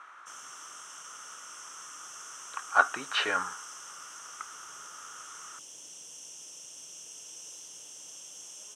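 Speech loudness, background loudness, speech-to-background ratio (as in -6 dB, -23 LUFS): -29.0 LUFS, -44.5 LUFS, 15.5 dB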